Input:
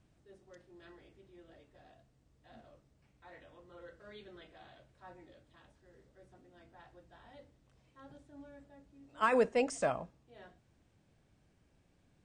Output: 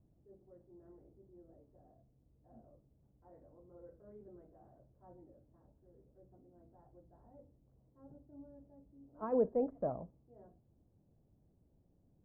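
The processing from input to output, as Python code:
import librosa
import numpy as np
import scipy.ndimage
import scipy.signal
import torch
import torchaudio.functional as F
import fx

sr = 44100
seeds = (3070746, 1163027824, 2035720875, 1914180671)

y = scipy.signal.sosfilt(scipy.signal.bessel(4, 530.0, 'lowpass', norm='mag', fs=sr, output='sos'), x)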